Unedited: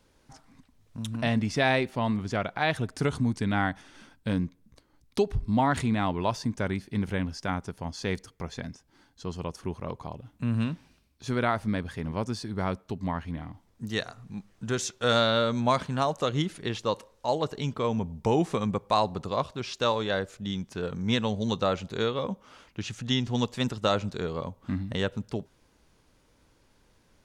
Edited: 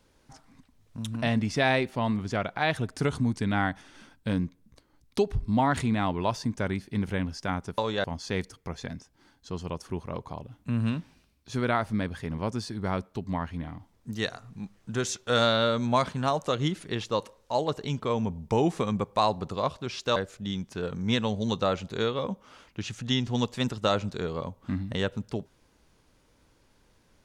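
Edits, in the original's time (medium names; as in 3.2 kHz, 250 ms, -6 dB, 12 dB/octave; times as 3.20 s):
19.90–20.16 s: move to 7.78 s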